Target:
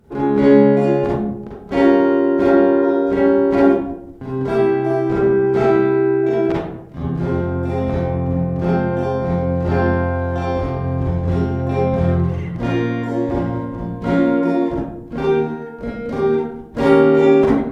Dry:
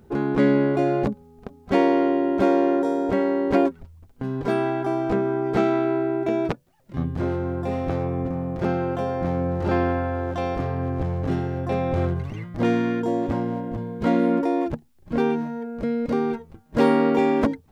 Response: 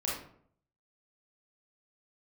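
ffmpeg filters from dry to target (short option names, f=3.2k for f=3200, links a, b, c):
-filter_complex "[0:a]asettb=1/sr,asplit=3[a][b][c];[a]atrim=end=2.444[d];[b]atrim=start=2.44:end=3.07,asetpts=PTS-STARTPTS,afade=t=in:d=0.004:c=qsin,afade=t=out:st=0.626:d=0.004:c=qsin,lowpass=f=4.9k:w=0.5412,lowpass=f=4.9k:w=1.3066[e];[c]atrim=start=3.066[f];[d][e]acrossfade=d=0.004:c1=hsin:c2=qsin[g];[g][f]acrossfade=d=0.004:c1=qsin:c2=hsin[h];[1:a]atrim=start_sample=2205,asetrate=31311,aresample=44100[i];[h][i]afir=irnorm=-1:irlink=0,volume=-2.5dB"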